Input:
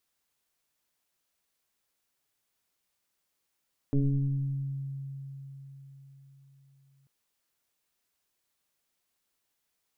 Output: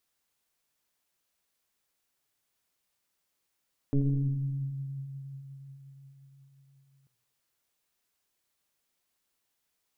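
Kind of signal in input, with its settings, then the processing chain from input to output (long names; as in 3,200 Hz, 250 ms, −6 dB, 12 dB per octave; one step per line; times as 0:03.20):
two-operator FM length 3.14 s, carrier 137 Hz, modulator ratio 1.04, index 1.4, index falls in 1.96 s exponential, decay 4.50 s, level −21 dB
feedback echo with a swinging delay time 80 ms, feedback 55%, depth 132 cents, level −16 dB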